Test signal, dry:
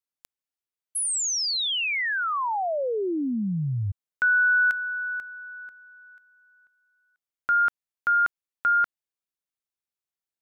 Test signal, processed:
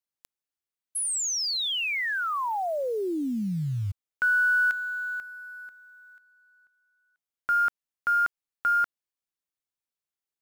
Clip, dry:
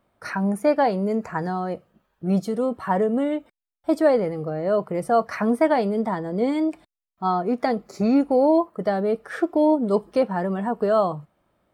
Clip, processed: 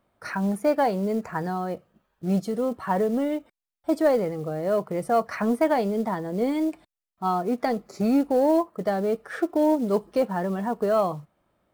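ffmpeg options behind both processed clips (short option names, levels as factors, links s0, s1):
-af "acrusher=bits=7:mode=log:mix=0:aa=0.000001,aeval=exprs='0.447*(cos(1*acos(clip(val(0)/0.447,-1,1)))-cos(1*PI/2))+0.0112*(cos(2*acos(clip(val(0)/0.447,-1,1)))-cos(2*PI/2))+0.0112*(cos(5*acos(clip(val(0)/0.447,-1,1)))-cos(5*PI/2))':c=same,volume=0.708"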